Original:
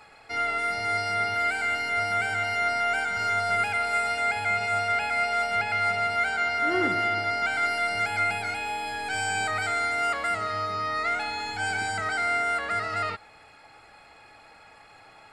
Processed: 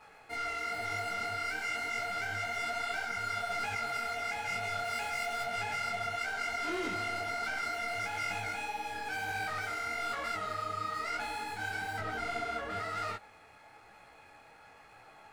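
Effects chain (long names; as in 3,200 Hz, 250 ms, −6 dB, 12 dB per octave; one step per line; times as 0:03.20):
running median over 9 samples
0:11.99–0:12.80: tilt shelving filter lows +6.5 dB, about 850 Hz
soft clipping −28.5 dBFS, distortion −9 dB
0:04.84–0:05.44: high-shelf EQ 9,100 Hz +8 dB
micro pitch shift up and down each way 37 cents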